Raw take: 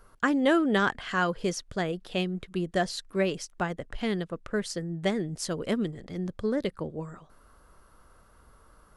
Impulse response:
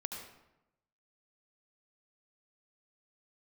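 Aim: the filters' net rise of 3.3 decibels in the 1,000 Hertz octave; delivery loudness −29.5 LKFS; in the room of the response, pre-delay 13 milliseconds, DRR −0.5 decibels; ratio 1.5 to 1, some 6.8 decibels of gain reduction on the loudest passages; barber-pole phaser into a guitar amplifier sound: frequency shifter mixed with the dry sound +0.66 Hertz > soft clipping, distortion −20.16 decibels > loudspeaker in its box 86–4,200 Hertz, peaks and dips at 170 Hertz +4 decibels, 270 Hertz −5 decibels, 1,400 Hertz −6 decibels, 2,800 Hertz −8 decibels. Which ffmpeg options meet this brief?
-filter_complex "[0:a]equalizer=frequency=1000:width_type=o:gain=6.5,acompressor=threshold=-36dB:ratio=1.5,asplit=2[link_01][link_02];[1:a]atrim=start_sample=2205,adelay=13[link_03];[link_02][link_03]afir=irnorm=-1:irlink=0,volume=0.5dB[link_04];[link_01][link_04]amix=inputs=2:normalize=0,asplit=2[link_05][link_06];[link_06]afreqshift=0.66[link_07];[link_05][link_07]amix=inputs=2:normalize=1,asoftclip=threshold=-21dB,highpass=86,equalizer=frequency=170:width_type=q:width=4:gain=4,equalizer=frequency=270:width_type=q:width=4:gain=-5,equalizer=frequency=1400:width_type=q:width=4:gain=-6,equalizer=frequency=2800:width_type=q:width=4:gain=-8,lowpass=frequency=4200:width=0.5412,lowpass=frequency=4200:width=1.3066,volume=5.5dB"

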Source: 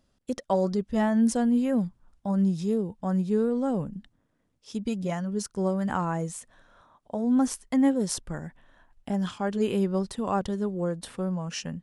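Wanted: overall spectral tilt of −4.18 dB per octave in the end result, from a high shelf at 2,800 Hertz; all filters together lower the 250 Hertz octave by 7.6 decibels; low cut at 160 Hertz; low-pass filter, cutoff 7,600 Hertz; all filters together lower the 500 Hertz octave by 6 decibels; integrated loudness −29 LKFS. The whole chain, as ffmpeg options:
ffmpeg -i in.wav -af "highpass=160,lowpass=7600,equalizer=frequency=250:width_type=o:gain=-7,equalizer=frequency=500:width_type=o:gain=-5.5,highshelf=frequency=2800:gain=6.5,volume=4.5dB" out.wav

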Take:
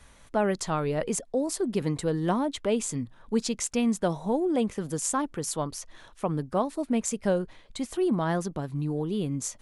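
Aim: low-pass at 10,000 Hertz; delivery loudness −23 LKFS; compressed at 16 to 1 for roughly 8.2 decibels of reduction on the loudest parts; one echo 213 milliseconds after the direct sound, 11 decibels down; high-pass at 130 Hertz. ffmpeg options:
ffmpeg -i in.wav -af "highpass=130,lowpass=10000,acompressor=threshold=-29dB:ratio=16,aecho=1:1:213:0.282,volume=11.5dB" out.wav

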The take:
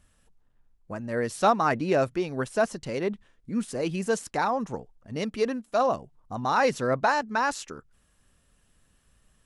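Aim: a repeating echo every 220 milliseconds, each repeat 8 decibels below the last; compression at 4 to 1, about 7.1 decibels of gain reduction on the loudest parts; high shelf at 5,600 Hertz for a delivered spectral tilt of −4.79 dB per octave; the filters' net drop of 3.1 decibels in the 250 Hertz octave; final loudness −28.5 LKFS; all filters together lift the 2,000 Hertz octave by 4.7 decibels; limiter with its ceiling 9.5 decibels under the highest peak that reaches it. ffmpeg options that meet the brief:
ffmpeg -i in.wav -af "equalizer=frequency=250:width_type=o:gain=-4,equalizer=frequency=2000:width_type=o:gain=7,highshelf=frequency=5600:gain=-3.5,acompressor=threshold=-25dB:ratio=4,alimiter=limit=-23.5dB:level=0:latency=1,aecho=1:1:220|440|660|880|1100:0.398|0.159|0.0637|0.0255|0.0102,volume=5.5dB" out.wav

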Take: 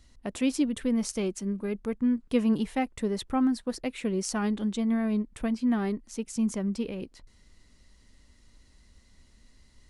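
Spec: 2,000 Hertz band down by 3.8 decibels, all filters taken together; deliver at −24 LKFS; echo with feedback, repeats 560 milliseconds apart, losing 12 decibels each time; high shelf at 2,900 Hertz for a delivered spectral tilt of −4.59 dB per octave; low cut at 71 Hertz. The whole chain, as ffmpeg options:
ffmpeg -i in.wav -af "highpass=71,equalizer=frequency=2000:width_type=o:gain=-8,highshelf=frequency=2900:gain=7.5,aecho=1:1:560|1120|1680:0.251|0.0628|0.0157,volume=4.5dB" out.wav

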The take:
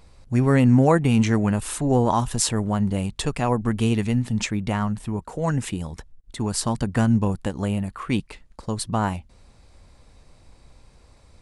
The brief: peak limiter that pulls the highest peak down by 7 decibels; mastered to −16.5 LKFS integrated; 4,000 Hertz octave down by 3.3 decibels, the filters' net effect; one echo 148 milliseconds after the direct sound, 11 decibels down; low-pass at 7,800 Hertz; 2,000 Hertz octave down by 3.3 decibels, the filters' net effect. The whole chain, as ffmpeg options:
ffmpeg -i in.wav -af "lowpass=7800,equalizer=frequency=2000:width_type=o:gain=-3.5,equalizer=frequency=4000:width_type=o:gain=-3,alimiter=limit=-12.5dB:level=0:latency=1,aecho=1:1:148:0.282,volume=8dB" out.wav

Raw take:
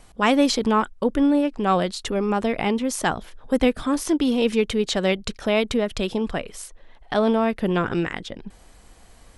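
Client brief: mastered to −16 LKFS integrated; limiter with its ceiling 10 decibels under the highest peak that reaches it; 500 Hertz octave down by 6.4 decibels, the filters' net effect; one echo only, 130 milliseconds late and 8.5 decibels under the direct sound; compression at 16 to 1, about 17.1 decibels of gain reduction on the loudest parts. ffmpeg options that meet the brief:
ffmpeg -i in.wav -af "equalizer=frequency=500:width_type=o:gain=-8,acompressor=threshold=-34dB:ratio=16,alimiter=level_in=7dB:limit=-24dB:level=0:latency=1,volume=-7dB,aecho=1:1:130:0.376,volume=24.5dB" out.wav

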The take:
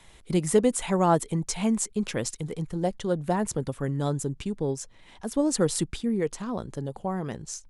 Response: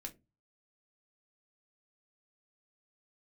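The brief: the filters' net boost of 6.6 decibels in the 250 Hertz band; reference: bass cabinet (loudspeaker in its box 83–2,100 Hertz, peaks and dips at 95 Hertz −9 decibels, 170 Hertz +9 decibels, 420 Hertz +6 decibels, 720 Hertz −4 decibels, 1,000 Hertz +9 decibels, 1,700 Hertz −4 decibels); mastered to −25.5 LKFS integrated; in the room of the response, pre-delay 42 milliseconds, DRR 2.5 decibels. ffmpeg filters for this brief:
-filter_complex "[0:a]equalizer=frequency=250:width_type=o:gain=4.5,asplit=2[link_01][link_02];[1:a]atrim=start_sample=2205,adelay=42[link_03];[link_02][link_03]afir=irnorm=-1:irlink=0,volume=1.5dB[link_04];[link_01][link_04]amix=inputs=2:normalize=0,highpass=frequency=83:width=0.5412,highpass=frequency=83:width=1.3066,equalizer=frequency=95:width_type=q:width=4:gain=-9,equalizer=frequency=170:width_type=q:width=4:gain=9,equalizer=frequency=420:width_type=q:width=4:gain=6,equalizer=frequency=720:width_type=q:width=4:gain=-4,equalizer=frequency=1000:width_type=q:width=4:gain=9,equalizer=frequency=1700:width_type=q:width=4:gain=-4,lowpass=frequency=2100:width=0.5412,lowpass=frequency=2100:width=1.3066,volume=-5.5dB"

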